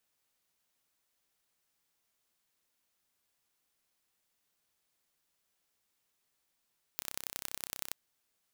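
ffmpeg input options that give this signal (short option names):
-f lavfi -i "aevalsrc='0.398*eq(mod(n,1361),0)*(0.5+0.5*eq(mod(n,4083),0))':d=0.94:s=44100"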